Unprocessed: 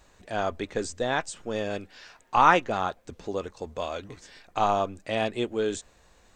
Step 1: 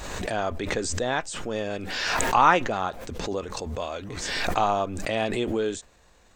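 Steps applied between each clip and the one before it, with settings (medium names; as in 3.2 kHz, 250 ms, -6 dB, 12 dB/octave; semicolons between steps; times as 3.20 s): swell ahead of each attack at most 29 dB/s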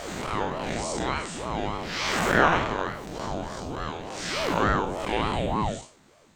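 spectral blur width 153 ms; ring modulator with a swept carrier 410 Hz, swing 60%, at 3.4 Hz; trim +4.5 dB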